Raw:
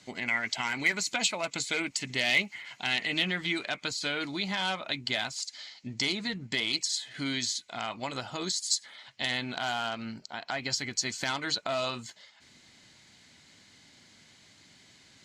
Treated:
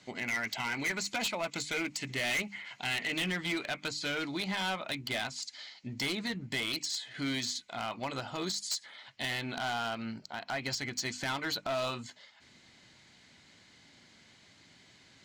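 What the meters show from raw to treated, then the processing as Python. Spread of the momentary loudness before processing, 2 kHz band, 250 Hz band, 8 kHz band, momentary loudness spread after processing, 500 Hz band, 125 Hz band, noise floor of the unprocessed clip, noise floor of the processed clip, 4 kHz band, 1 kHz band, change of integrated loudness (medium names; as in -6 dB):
9 LU, -3.5 dB, -1.0 dB, -5.5 dB, 6 LU, -1.5 dB, -0.5 dB, -59 dBFS, -61 dBFS, -5.0 dB, -2.0 dB, -3.5 dB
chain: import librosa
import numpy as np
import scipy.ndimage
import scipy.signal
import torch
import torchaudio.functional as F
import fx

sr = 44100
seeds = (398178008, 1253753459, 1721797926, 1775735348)

y = fx.high_shelf(x, sr, hz=6000.0, db=-9.0)
y = fx.hum_notches(y, sr, base_hz=50, count=6)
y = np.clip(y, -10.0 ** (-28.5 / 20.0), 10.0 ** (-28.5 / 20.0))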